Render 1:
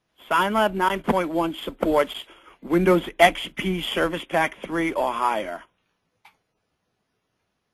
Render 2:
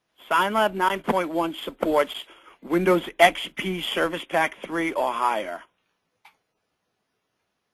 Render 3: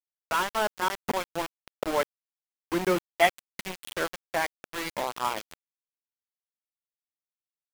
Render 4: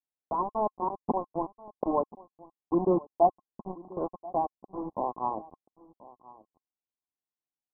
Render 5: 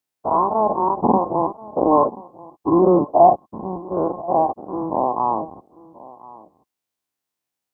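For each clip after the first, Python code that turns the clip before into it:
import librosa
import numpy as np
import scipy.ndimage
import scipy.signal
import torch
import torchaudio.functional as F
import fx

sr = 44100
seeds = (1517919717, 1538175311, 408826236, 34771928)

y1 = fx.low_shelf(x, sr, hz=180.0, db=-9.0)
y2 = np.where(np.abs(y1) >= 10.0 ** (-21.5 / 20.0), y1, 0.0)
y2 = F.gain(torch.from_numpy(y2), -5.5).numpy()
y3 = scipy.signal.sosfilt(scipy.signal.cheby1(6, 6, 1100.0, 'lowpass', fs=sr, output='sos'), y2)
y3 = y3 + 10.0 ** (-20.5 / 20.0) * np.pad(y3, (int(1033 * sr / 1000.0), 0))[:len(y3)]
y3 = F.gain(torch.from_numpy(y3), 4.0).numpy()
y4 = fx.spec_dilate(y3, sr, span_ms=120)
y4 = scipy.signal.sosfilt(scipy.signal.butter(2, 65.0, 'highpass', fs=sr, output='sos'), y4)
y4 = F.gain(torch.from_numpy(y4), 7.0).numpy()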